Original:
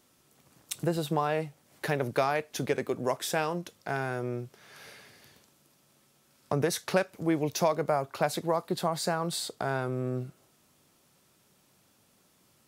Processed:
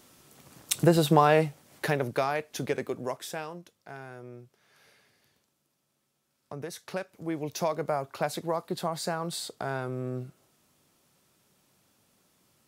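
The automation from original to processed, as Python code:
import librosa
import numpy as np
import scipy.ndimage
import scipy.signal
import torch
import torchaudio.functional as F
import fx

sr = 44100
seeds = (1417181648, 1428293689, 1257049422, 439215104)

y = fx.gain(x, sr, db=fx.line((1.46, 8.0), (2.15, -1.0), (2.82, -1.0), (3.74, -11.5), (6.55, -11.5), (7.78, -2.0)))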